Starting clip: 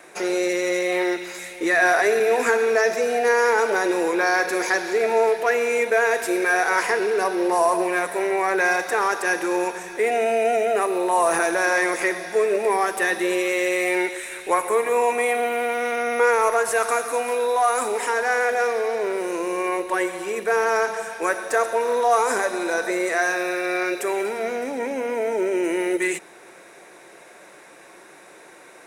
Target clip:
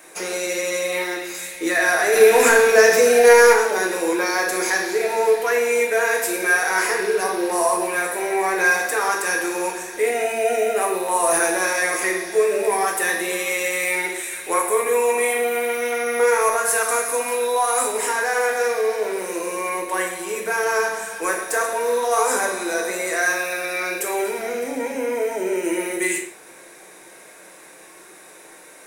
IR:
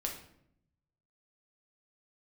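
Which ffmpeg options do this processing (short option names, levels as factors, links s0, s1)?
-filter_complex "[0:a]aemphasis=mode=production:type=50kf,asplit=3[s0][s1][s2];[s0]afade=t=out:st=2.12:d=0.02[s3];[s1]acontrast=78,afade=t=in:st=2.12:d=0.02,afade=t=out:st=3.52:d=0.02[s4];[s2]afade=t=in:st=3.52:d=0.02[s5];[s3][s4][s5]amix=inputs=3:normalize=0[s6];[1:a]atrim=start_sample=2205,afade=t=out:st=0.21:d=0.01,atrim=end_sample=9702,asetrate=39249,aresample=44100[s7];[s6][s7]afir=irnorm=-1:irlink=0,volume=0.75"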